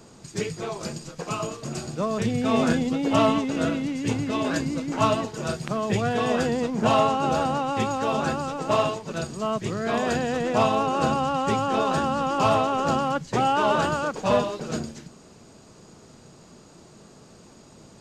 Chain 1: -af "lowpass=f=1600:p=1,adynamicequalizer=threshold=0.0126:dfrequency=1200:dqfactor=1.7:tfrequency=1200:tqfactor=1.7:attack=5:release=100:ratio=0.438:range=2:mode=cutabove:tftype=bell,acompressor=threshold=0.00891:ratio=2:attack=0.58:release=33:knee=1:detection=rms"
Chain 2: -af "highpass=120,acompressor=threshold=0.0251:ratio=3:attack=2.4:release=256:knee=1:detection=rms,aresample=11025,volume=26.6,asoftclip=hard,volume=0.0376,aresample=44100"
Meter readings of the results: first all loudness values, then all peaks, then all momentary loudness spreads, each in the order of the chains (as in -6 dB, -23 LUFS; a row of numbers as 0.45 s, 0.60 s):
-37.5 LUFS, -35.5 LUFS; -24.0 dBFS, -26.5 dBFS; 16 LU, 17 LU